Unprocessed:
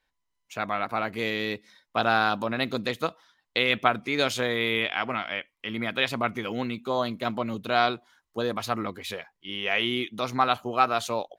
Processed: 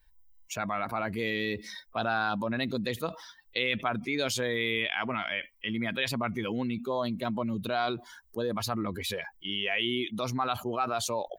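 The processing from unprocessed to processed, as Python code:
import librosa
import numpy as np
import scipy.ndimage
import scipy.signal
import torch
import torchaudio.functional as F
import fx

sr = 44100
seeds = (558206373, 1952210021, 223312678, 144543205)

y = fx.bin_expand(x, sr, power=1.5)
y = fx.env_flatten(y, sr, amount_pct=70)
y = y * 10.0 ** (-8.5 / 20.0)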